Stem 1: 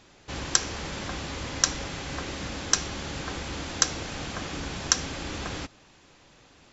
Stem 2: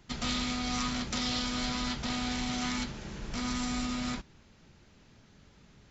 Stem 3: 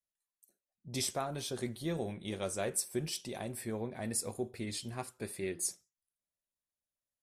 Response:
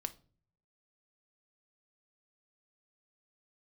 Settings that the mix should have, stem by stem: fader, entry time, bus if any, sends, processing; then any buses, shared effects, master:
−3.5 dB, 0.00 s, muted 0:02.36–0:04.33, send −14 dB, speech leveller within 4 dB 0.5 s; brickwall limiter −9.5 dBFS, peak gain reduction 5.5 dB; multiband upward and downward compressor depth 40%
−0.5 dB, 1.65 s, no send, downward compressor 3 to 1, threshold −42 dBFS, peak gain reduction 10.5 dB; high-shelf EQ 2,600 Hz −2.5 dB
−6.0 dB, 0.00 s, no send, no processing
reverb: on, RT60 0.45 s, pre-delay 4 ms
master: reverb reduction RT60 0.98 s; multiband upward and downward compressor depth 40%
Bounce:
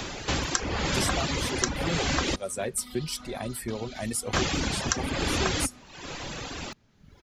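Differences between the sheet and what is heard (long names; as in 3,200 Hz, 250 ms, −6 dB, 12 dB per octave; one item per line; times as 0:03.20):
stem 1 −3.5 dB → +5.0 dB
stem 3 −6.0 dB → +4.5 dB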